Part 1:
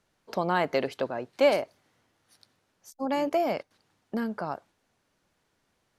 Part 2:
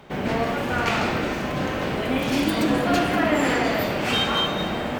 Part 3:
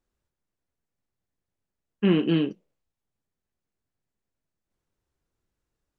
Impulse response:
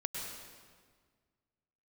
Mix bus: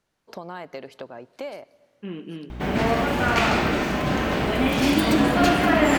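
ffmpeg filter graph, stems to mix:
-filter_complex "[0:a]acompressor=threshold=-32dB:ratio=3,volume=-3dB,asplit=2[a][b];[b]volume=-21.5dB[c];[1:a]bandreject=f=510:w=12,aeval=exprs='val(0)+0.0158*(sin(2*PI*60*n/s)+sin(2*PI*2*60*n/s)/2+sin(2*PI*3*60*n/s)/3+sin(2*PI*4*60*n/s)/4+sin(2*PI*5*60*n/s)/5)':c=same,adelay=2500,volume=2.5dB[d];[2:a]volume=-15.5dB,asplit=2[e][f];[f]volume=-11.5dB[g];[3:a]atrim=start_sample=2205[h];[c][g]amix=inputs=2:normalize=0[i];[i][h]afir=irnorm=-1:irlink=0[j];[a][d][e][j]amix=inputs=4:normalize=0"

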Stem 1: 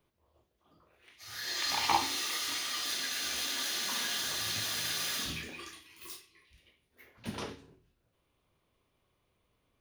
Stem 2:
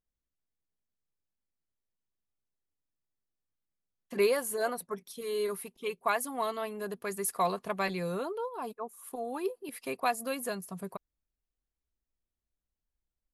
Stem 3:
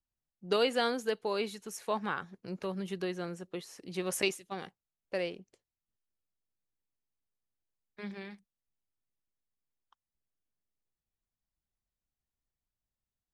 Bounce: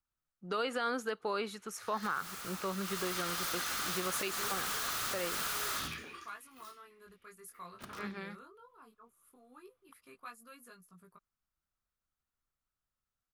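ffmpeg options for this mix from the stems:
-filter_complex "[0:a]aeval=exprs='(mod(31.6*val(0)+1,2)-1)/31.6':c=same,adelay=550,volume=-2dB,afade=t=in:st=2.79:d=0.31:silence=0.334965,afade=t=out:st=5.76:d=0.55:silence=0.316228[a];[1:a]equalizer=f=700:w=1.2:g=-12.5,flanger=delay=17:depth=6.6:speed=0.19,adelay=200,volume=-15.5dB[b];[2:a]volume=-1.5dB[c];[a][b][c]amix=inputs=3:normalize=0,equalizer=f=1.3k:t=o:w=0.56:g=13,alimiter=level_in=0.5dB:limit=-24dB:level=0:latency=1:release=109,volume=-0.5dB"

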